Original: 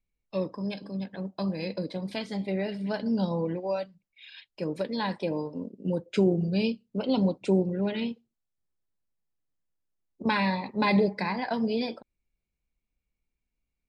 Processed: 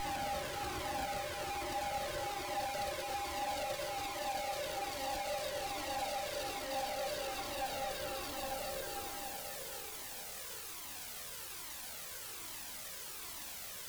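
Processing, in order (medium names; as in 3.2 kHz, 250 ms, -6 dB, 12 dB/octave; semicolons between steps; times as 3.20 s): every band turned upside down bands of 1 kHz; Paulstretch 12×, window 1.00 s, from 11.50 s; in parallel at -3.5 dB: word length cut 8-bit, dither triangular; on the sum: Chebyshev shaper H 2 -6 dB, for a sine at -44 dBFS; on a send: repeats whose band climbs or falls 102 ms, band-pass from 440 Hz, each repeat 0.7 oct, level -4.5 dB; on the sum: Shepard-style flanger falling 1.2 Hz; trim +9 dB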